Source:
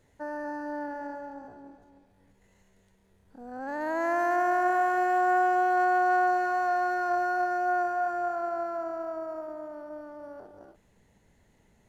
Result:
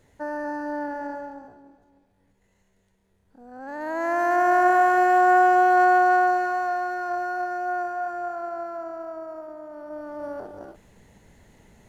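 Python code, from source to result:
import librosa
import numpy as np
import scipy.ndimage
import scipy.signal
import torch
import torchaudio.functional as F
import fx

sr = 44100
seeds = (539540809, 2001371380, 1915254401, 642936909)

y = fx.gain(x, sr, db=fx.line((1.2, 5.0), (1.64, -3.0), (3.49, -3.0), (4.58, 7.0), (5.9, 7.0), (6.88, -0.5), (9.64, -0.5), (10.25, 10.0)))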